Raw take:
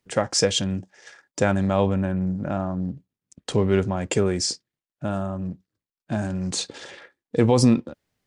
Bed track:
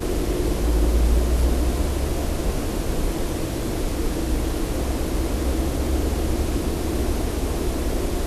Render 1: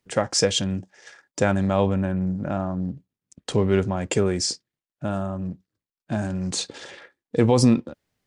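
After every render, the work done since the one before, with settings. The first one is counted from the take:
no processing that can be heard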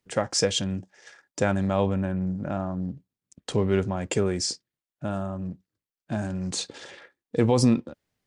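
level −3 dB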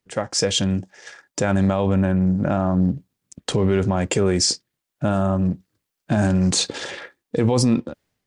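automatic gain control gain up to 13 dB
brickwall limiter −9 dBFS, peak gain reduction 7.5 dB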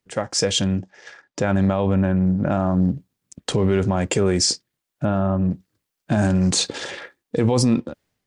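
0:00.68–0:02.51: high-frequency loss of the air 92 metres
0:05.05–0:05.51: high-frequency loss of the air 240 metres

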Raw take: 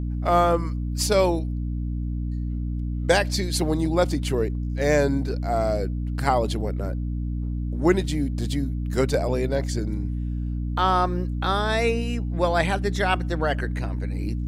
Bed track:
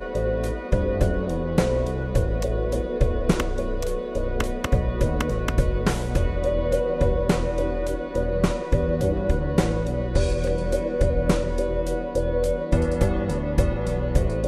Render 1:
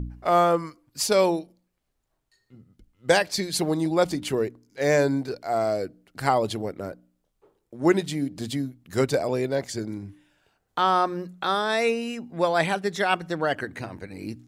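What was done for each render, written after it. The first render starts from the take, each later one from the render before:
hum removal 60 Hz, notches 5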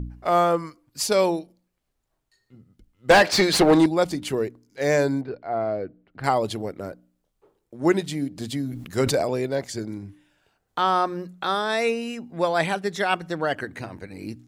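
0:03.10–0:03.86: mid-hump overdrive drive 26 dB, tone 2,100 Hz, clips at −5.5 dBFS
0:05.21–0:06.24: high-frequency loss of the air 420 metres
0:08.57–0:09.30: level that may fall only so fast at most 56 dB per second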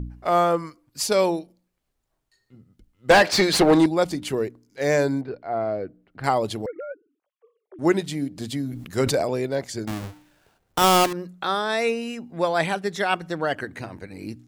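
0:06.66–0:07.79: three sine waves on the formant tracks
0:09.87–0:11.13: each half-wave held at its own peak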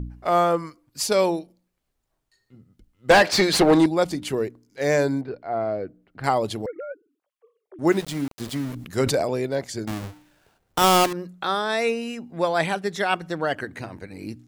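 0:07.87–0:08.75: centre clipping without the shift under −33.5 dBFS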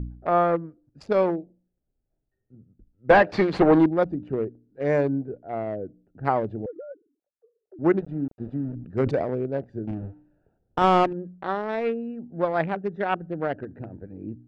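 adaptive Wiener filter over 41 samples
low-pass filter 1,800 Hz 12 dB per octave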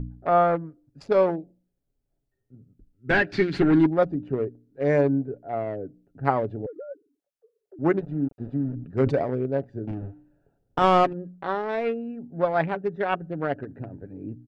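0:02.97–0:03.84: gain on a spectral selection 410–1,300 Hz −12 dB
comb filter 7.2 ms, depth 35%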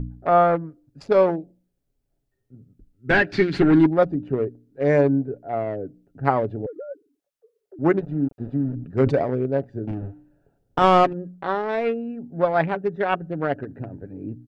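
level +3 dB
brickwall limiter −3 dBFS, peak gain reduction 1 dB

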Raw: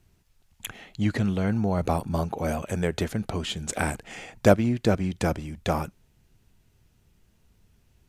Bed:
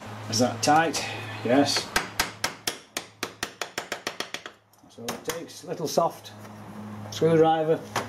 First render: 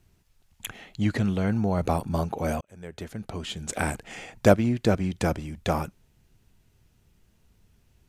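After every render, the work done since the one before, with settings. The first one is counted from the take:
0:02.61–0:03.92: fade in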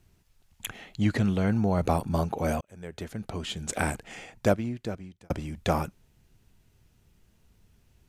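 0:03.75–0:05.30: fade out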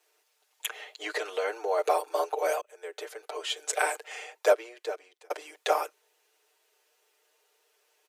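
Butterworth high-pass 380 Hz 72 dB per octave
comb filter 6.6 ms, depth 93%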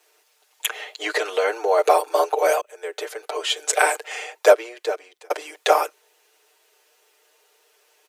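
level +9 dB
brickwall limiter −2 dBFS, peak gain reduction 1 dB

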